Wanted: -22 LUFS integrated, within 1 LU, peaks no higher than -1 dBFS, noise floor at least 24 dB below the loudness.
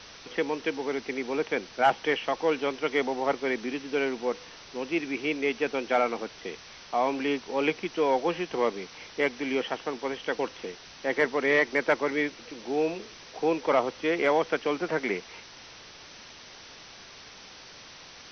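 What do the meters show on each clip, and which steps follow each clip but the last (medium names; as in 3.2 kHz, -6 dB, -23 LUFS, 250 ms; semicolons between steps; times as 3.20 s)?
noise floor -48 dBFS; noise floor target -53 dBFS; loudness -28.5 LUFS; peak level -11.5 dBFS; loudness target -22.0 LUFS
-> noise reduction 6 dB, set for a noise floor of -48 dBFS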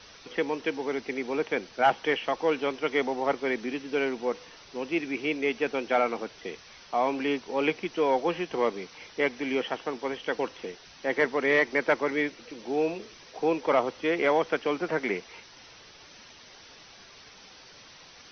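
noise floor -51 dBFS; noise floor target -53 dBFS
-> noise reduction 6 dB, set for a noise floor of -51 dBFS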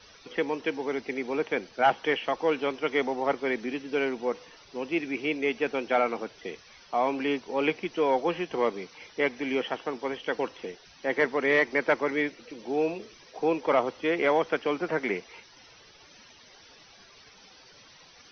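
noise floor -54 dBFS; loudness -28.5 LUFS; peak level -11.5 dBFS; loudness target -22.0 LUFS
-> trim +6.5 dB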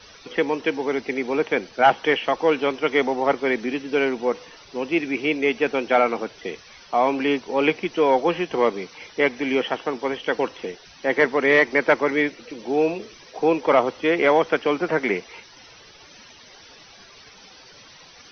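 loudness -22.0 LUFS; peak level -5.0 dBFS; noise floor -48 dBFS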